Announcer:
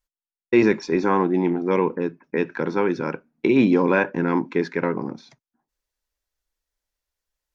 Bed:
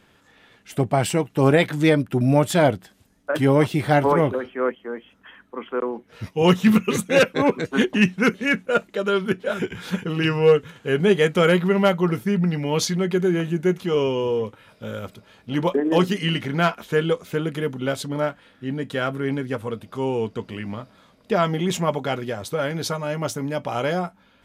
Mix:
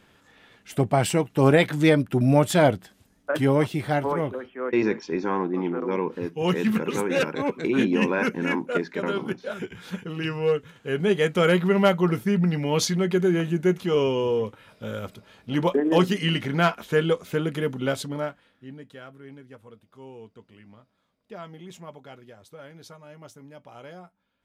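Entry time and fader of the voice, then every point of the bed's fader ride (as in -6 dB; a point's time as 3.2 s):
4.20 s, -6.0 dB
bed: 3.19 s -1 dB
4.1 s -7.5 dB
10.52 s -7.5 dB
11.78 s -1 dB
17.94 s -1 dB
19.07 s -19.5 dB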